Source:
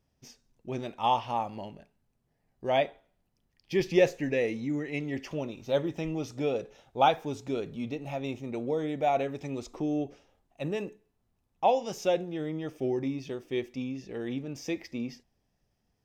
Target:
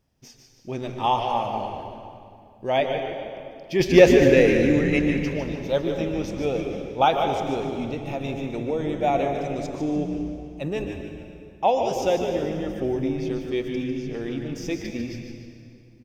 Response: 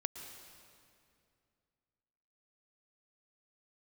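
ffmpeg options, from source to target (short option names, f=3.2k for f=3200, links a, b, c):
-filter_complex "[0:a]asplit=3[a][b][c];[a]afade=t=out:st=3.79:d=0.02[d];[b]acontrast=72,afade=t=in:st=3.79:d=0.02,afade=t=out:st=5.09:d=0.02[e];[c]afade=t=in:st=5.09:d=0.02[f];[d][e][f]amix=inputs=3:normalize=0,asplit=5[g][h][i][j][k];[h]adelay=149,afreqshift=-120,volume=-8dB[l];[i]adelay=298,afreqshift=-240,volume=-16.9dB[m];[j]adelay=447,afreqshift=-360,volume=-25.7dB[n];[k]adelay=596,afreqshift=-480,volume=-34.6dB[o];[g][l][m][n][o]amix=inputs=5:normalize=0[p];[1:a]atrim=start_sample=2205[q];[p][q]afir=irnorm=-1:irlink=0,volume=5dB"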